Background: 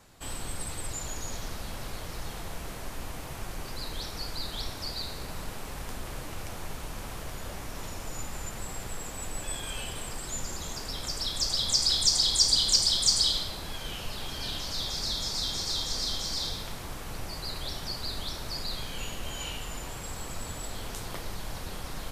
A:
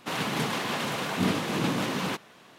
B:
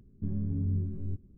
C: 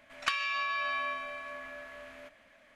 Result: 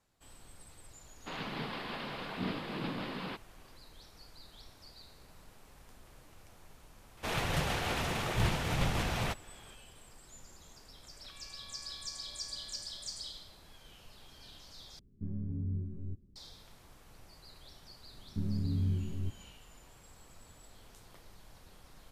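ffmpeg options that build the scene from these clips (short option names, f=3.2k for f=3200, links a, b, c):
-filter_complex "[1:a]asplit=2[a][b];[2:a]asplit=2[c][d];[0:a]volume=-19dB[e];[a]aresample=11025,aresample=44100[f];[b]afreqshift=-300[g];[3:a]acompressor=threshold=-38dB:ratio=6:attack=3.2:release=140:knee=1:detection=peak[h];[e]asplit=2[i][j];[i]atrim=end=14.994[k];[c]atrim=end=1.37,asetpts=PTS-STARTPTS,volume=-6dB[l];[j]atrim=start=16.356[m];[f]atrim=end=2.58,asetpts=PTS-STARTPTS,volume=-10.5dB,afade=t=in:d=0.004:c=hsin,afade=t=out:st=2.576:d=0.004:c=hsin,adelay=1200[n];[g]atrim=end=2.58,asetpts=PTS-STARTPTS,volume=-3.5dB,afade=t=in:d=0.004:c=hsin,afade=t=out:st=2.576:d=0.004:c=hsin,adelay=7170[o];[h]atrim=end=2.75,asetpts=PTS-STARTPTS,volume=-17dB,afade=t=in:d=0.004:c=hsin,afade=t=out:st=2.746:d=0.004:c=hsin,adelay=11020[p];[d]atrim=end=1.37,asetpts=PTS-STARTPTS,volume=-1.5dB,afade=t=in:d=0.004:c=hsin,afade=t=out:st=1.366:d=0.004:c=hsin,adelay=18140[q];[k][l]acrossfade=d=0.004:c1=hsin:c2=hsin[r];[r][m]acrossfade=d=0.004:c1=hsin:c2=hsin[s];[s][n][o][p][q]amix=inputs=5:normalize=0"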